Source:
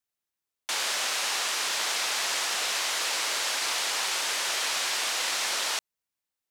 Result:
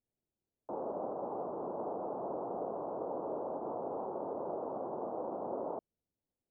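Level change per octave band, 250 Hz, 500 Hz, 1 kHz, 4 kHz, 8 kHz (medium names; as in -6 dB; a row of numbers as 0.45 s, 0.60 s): +9.0 dB, +5.0 dB, -6.0 dB, under -40 dB, under -40 dB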